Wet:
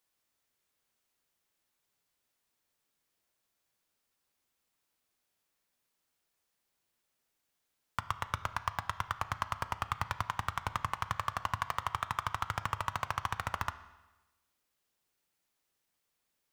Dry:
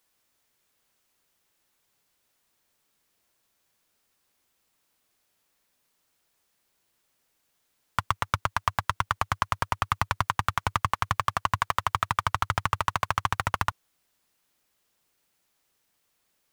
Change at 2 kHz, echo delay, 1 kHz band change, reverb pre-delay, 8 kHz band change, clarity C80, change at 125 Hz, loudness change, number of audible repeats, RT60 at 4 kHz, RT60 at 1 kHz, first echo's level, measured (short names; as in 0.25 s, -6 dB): -8.5 dB, none, -8.0 dB, 12 ms, -8.5 dB, 16.0 dB, -8.5 dB, -8.5 dB, none, 1.1 s, 1.1 s, none